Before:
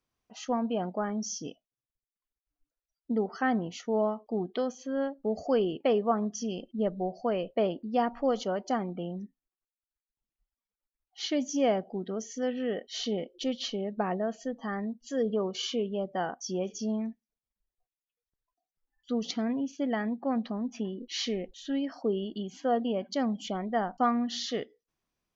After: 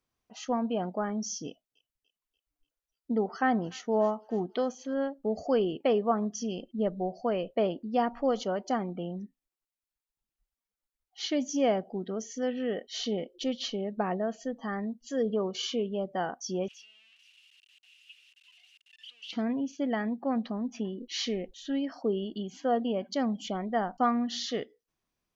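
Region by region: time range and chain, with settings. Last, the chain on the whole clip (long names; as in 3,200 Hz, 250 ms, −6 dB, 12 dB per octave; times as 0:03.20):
0:01.46–0:04.94: dynamic equaliser 860 Hz, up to +3 dB, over −40 dBFS, Q 1.2 + delay with a high-pass on its return 292 ms, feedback 53%, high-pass 1,700 Hz, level −17.5 dB
0:16.68–0:19.33: converter with a step at zero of −38 dBFS + four-pole ladder band-pass 2,900 Hz, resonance 85%
whole clip: no processing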